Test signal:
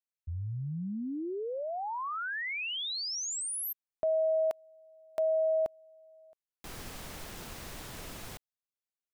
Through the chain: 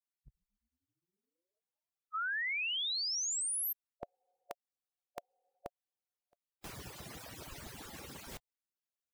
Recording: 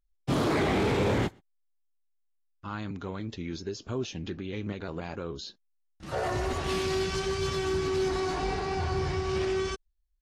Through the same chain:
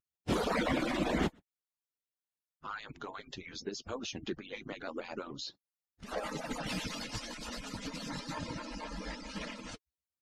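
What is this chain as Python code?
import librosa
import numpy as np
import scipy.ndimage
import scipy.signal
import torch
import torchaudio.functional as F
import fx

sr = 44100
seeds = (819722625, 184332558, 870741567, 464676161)

y = fx.hpss_only(x, sr, part='percussive')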